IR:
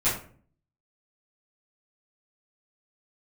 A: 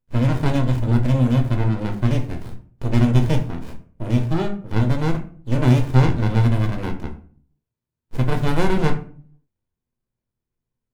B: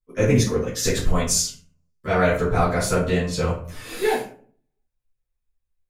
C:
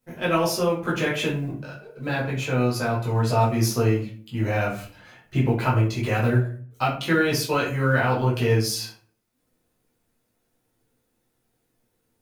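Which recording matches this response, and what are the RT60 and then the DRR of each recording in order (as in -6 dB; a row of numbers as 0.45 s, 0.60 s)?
B; 0.45 s, 0.45 s, 0.45 s; 3.5 dB, -14.5 dB, -6.5 dB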